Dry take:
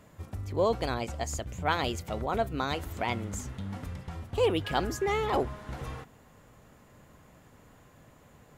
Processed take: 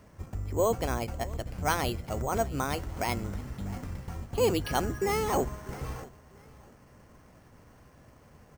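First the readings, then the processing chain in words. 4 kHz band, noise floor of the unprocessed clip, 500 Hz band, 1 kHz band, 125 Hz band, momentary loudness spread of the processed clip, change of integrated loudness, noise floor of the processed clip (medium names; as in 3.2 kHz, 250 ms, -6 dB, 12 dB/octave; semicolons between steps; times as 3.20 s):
-2.0 dB, -58 dBFS, 0.0 dB, 0.0 dB, +1.5 dB, 12 LU, +0.5 dB, -57 dBFS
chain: octave divider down 1 oct, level -4 dB; feedback delay 646 ms, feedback 27%, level -21 dB; careless resampling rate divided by 6×, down filtered, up hold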